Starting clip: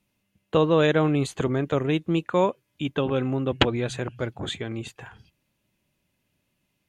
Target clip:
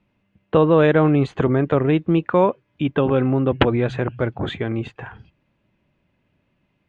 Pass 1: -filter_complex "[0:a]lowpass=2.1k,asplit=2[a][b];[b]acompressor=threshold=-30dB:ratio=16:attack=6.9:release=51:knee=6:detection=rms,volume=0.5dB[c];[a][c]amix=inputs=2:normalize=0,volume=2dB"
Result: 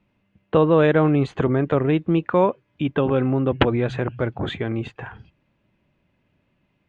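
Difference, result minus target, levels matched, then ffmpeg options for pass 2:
compressor: peak gain reduction +6 dB
-filter_complex "[0:a]lowpass=2.1k,asplit=2[a][b];[b]acompressor=threshold=-23.5dB:ratio=16:attack=6.9:release=51:knee=6:detection=rms,volume=0.5dB[c];[a][c]amix=inputs=2:normalize=0,volume=2dB"

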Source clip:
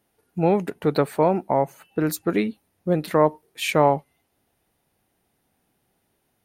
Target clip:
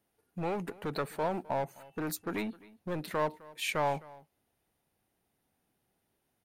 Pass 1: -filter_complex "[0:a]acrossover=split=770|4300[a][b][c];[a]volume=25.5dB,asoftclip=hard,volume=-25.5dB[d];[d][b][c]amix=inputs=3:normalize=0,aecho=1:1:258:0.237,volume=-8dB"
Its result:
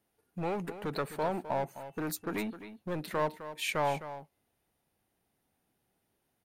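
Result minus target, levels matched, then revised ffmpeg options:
echo-to-direct +9 dB
-filter_complex "[0:a]acrossover=split=770|4300[a][b][c];[a]volume=25.5dB,asoftclip=hard,volume=-25.5dB[d];[d][b][c]amix=inputs=3:normalize=0,aecho=1:1:258:0.0841,volume=-8dB"

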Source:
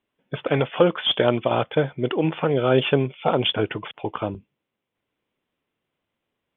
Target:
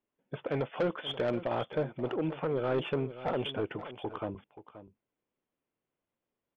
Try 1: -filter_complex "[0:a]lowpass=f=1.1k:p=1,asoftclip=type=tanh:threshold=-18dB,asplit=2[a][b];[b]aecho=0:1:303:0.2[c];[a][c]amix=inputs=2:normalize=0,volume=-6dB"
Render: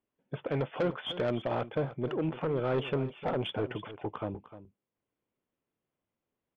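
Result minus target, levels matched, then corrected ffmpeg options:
echo 0.226 s early; 125 Hz band +2.5 dB
-filter_complex "[0:a]lowpass=f=1.1k:p=1,equalizer=f=100:w=0.6:g=-4,asoftclip=type=tanh:threshold=-18dB,asplit=2[a][b];[b]aecho=0:1:529:0.2[c];[a][c]amix=inputs=2:normalize=0,volume=-6dB"

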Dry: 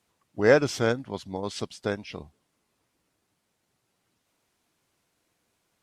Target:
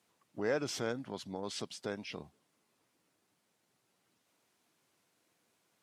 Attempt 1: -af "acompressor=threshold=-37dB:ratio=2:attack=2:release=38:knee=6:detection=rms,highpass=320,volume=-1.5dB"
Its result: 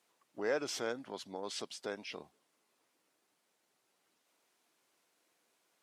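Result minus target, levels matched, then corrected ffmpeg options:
125 Hz band -10.0 dB
-af "acompressor=threshold=-37dB:ratio=2:attack=2:release=38:knee=6:detection=rms,highpass=140,volume=-1.5dB"

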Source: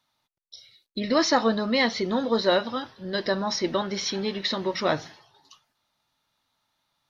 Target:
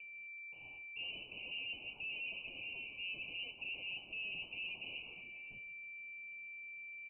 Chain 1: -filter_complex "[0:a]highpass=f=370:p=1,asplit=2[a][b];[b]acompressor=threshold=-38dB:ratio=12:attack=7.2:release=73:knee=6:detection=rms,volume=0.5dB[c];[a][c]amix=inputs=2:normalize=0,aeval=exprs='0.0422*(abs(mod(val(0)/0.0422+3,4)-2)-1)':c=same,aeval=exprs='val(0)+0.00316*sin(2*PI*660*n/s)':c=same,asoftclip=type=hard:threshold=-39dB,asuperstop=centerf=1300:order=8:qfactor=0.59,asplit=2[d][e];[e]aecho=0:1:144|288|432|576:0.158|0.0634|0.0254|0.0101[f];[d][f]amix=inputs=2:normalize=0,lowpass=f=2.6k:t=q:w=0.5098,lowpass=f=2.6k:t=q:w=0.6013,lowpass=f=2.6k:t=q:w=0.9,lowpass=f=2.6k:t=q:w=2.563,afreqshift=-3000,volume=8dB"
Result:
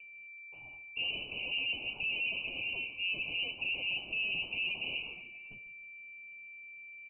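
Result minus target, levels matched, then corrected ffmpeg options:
compressor: peak gain reduction -8 dB; hard clip: distortion -5 dB
-filter_complex "[0:a]highpass=f=370:p=1,asplit=2[a][b];[b]acompressor=threshold=-47dB:ratio=12:attack=7.2:release=73:knee=6:detection=rms,volume=0.5dB[c];[a][c]amix=inputs=2:normalize=0,aeval=exprs='0.0422*(abs(mod(val(0)/0.0422+3,4)-2)-1)':c=same,aeval=exprs='val(0)+0.00316*sin(2*PI*660*n/s)':c=same,asoftclip=type=hard:threshold=-48.5dB,asuperstop=centerf=1300:order=8:qfactor=0.59,asplit=2[d][e];[e]aecho=0:1:144|288|432|576:0.158|0.0634|0.0254|0.0101[f];[d][f]amix=inputs=2:normalize=0,lowpass=f=2.6k:t=q:w=0.5098,lowpass=f=2.6k:t=q:w=0.6013,lowpass=f=2.6k:t=q:w=0.9,lowpass=f=2.6k:t=q:w=2.563,afreqshift=-3000,volume=8dB"

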